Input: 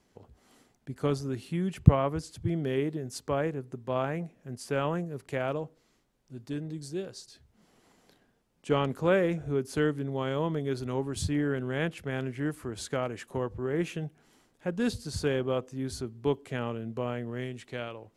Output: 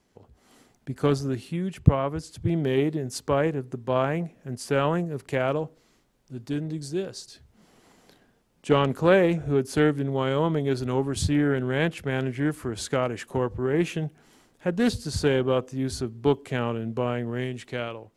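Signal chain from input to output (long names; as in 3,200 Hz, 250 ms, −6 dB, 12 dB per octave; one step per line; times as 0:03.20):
automatic gain control gain up to 6 dB
highs frequency-modulated by the lows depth 0.82 ms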